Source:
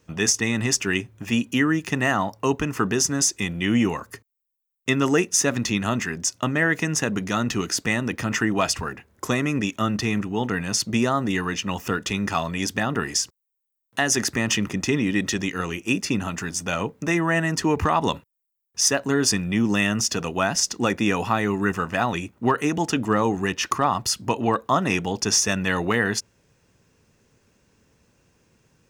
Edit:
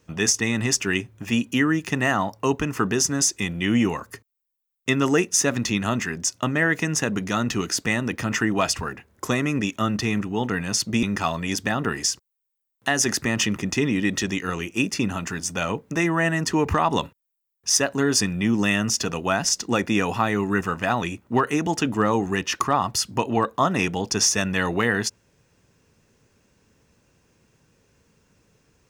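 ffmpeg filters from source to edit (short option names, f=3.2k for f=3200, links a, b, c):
-filter_complex "[0:a]asplit=2[a][b];[a]atrim=end=11.032[c];[b]atrim=start=12.138[d];[c][d]acrossfade=d=0.004:c1=hsin:c2=hsin"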